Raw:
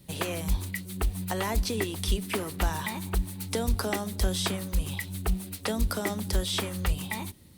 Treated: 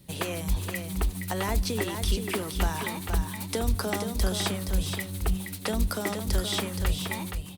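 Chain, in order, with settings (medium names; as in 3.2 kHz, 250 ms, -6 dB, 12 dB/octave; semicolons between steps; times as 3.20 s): delay 472 ms -6.5 dB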